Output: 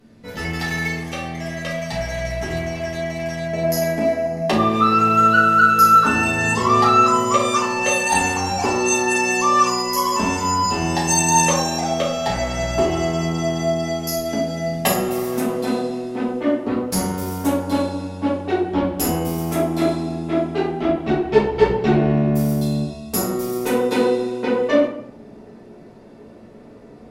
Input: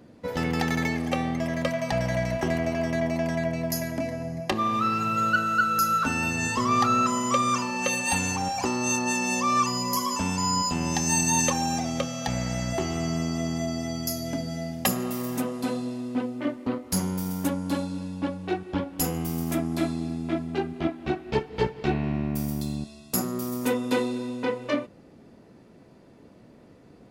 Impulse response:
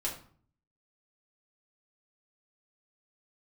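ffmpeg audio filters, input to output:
-filter_complex "[0:a]asetnsamples=nb_out_samples=441:pad=0,asendcmd='3.53 equalizer g 4.5',equalizer=frequency=580:width=0.48:gain=-7.5[link_01];[1:a]atrim=start_sample=2205,asetrate=29988,aresample=44100[link_02];[link_01][link_02]afir=irnorm=-1:irlink=0"

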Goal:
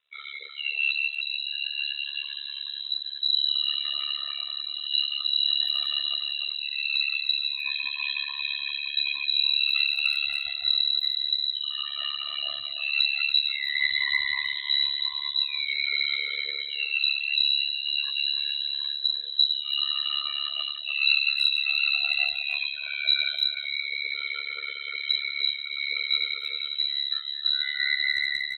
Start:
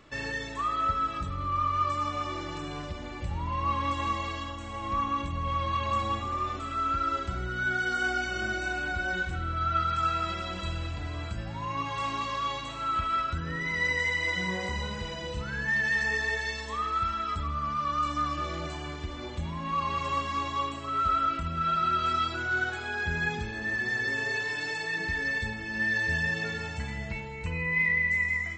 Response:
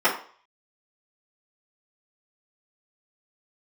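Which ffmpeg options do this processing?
-filter_complex "[0:a]aeval=exprs='0.168*(cos(1*acos(clip(val(0)/0.168,-1,1)))-cos(1*PI/2))+0.0299*(cos(2*acos(clip(val(0)/0.168,-1,1)))-cos(2*PI/2))':channel_layout=same,asubboost=boost=8.5:cutoff=110,asplit=2[link_01][link_02];[1:a]atrim=start_sample=2205,lowshelf=frequency=430:gain=-10,highshelf=frequency=2200:gain=2.5[link_03];[link_02][link_03]afir=irnorm=-1:irlink=0,volume=-23dB[link_04];[link_01][link_04]amix=inputs=2:normalize=0,afftdn=noise_reduction=19:noise_floor=-29,bandreject=frequency=60:width_type=h:width=6,bandreject=frequency=120:width_type=h:width=6,bandreject=frequency=180:width_type=h:width=6,bandreject=frequency=240:width_type=h:width=6,acontrast=49,lowpass=frequency=3400:width_type=q:width=0.5098,lowpass=frequency=3400:width_type=q:width=0.6013,lowpass=frequency=3400:width_type=q:width=0.9,lowpass=frequency=3400:width_type=q:width=2.563,afreqshift=-4000,asplit=2[link_05][link_06];[link_06]adelay=300,highpass=300,lowpass=3400,asoftclip=type=hard:threshold=-11.5dB,volume=-7dB[link_07];[link_05][link_07]amix=inputs=2:normalize=0,dynaudnorm=framelen=420:gausssize=21:maxgain=12dB,tremolo=f=71:d=1,adynamicequalizer=threshold=0.0501:dfrequency=2800:dqfactor=0.7:tfrequency=2800:tqfactor=0.7:attack=5:release=100:ratio=0.375:range=2.5:mode=cutabove:tftype=highshelf,volume=-5dB"

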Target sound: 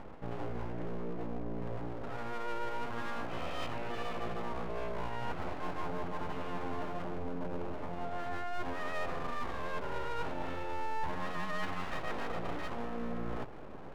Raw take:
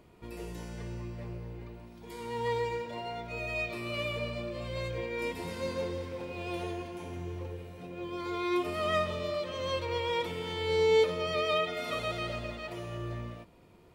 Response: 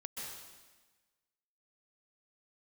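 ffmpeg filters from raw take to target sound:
-af "lowpass=1200,areverse,acompressor=threshold=-47dB:ratio=6,areverse,aeval=exprs='abs(val(0))':channel_layout=same,volume=14.5dB"

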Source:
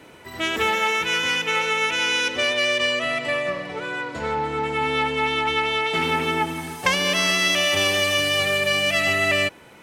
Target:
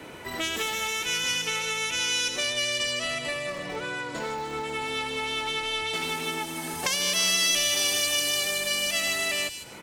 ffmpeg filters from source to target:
ffmpeg -i in.wav -filter_complex "[0:a]acrossover=split=120|4100[link_01][link_02][link_03];[link_01]aeval=exprs='(mod(224*val(0)+1,2)-1)/224':channel_layout=same[link_04];[link_02]acompressor=threshold=-35dB:ratio=6[link_05];[link_03]aecho=1:1:153|306|459|612:0.501|0.14|0.0393|0.011[link_06];[link_04][link_05][link_06]amix=inputs=3:normalize=0,volume=4dB" out.wav

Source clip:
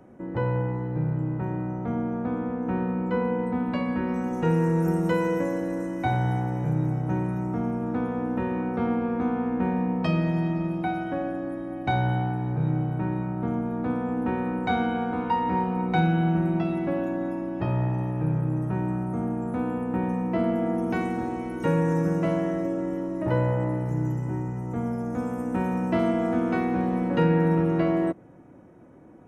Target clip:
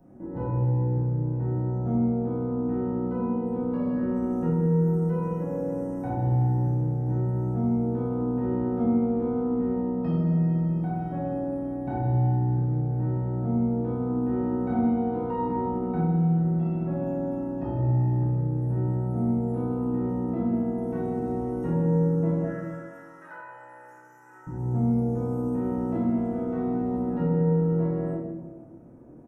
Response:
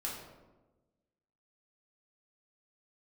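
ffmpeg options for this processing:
-filter_complex "[0:a]acrossover=split=2700[link_01][link_02];[link_02]acompressor=threshold=-57dB:ratio=4:attack=1:release=60[link_03];[link_01][link_03]amix=inputs=2:normalize=0,equalizer=frequency=2300:width=0.38:gain=-14,acompressor=threshold=-28dB:ratio=6,asettb=1/sr,asplit=3[link_04][link_05][link_06];[link_04]atrim=end=22.444[link_07];[link_05]atrim=start=22.44:end=24.47,asetpts=PTS-STARTPTS,afade=type=in:duration=0.004:curve=qsin,afade=type=out:start_time=2.026:duration=0.004:curve=qsin,highpass=frequency=1500:width_type=q:width=5[link_08];[link_06]atrim=start=24.466[link_09];[link_07][link_08]acrossfade=duration=0.004:curve1=hsin:curve2=qsin[link_10];[link_10][link_09]acrossfade=duration=0.004:curve1=qsin:curve2=hsin,aecho=1:1:30|64.5|104.2|149.8|202.3:0.631|0.398|0.251|0.158|0.1[link_11];[1:a]atrim=start_sample=2205[link_12];[link_11][link_12]afir=irnorm=-1:irlink=0"

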